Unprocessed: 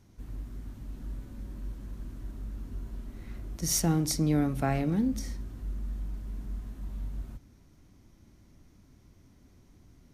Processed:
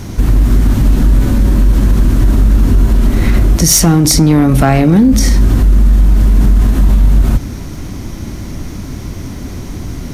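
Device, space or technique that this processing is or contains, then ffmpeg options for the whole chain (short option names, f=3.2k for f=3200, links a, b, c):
loud club master: -af "acompressor=threshold=-31dB:ratio=2,asoftclip=type=hard:threshold=-25dB,alimiter=level_in=35.5dB:limit=-1dB:release=50:level=0:latency=1,volume=-1dB"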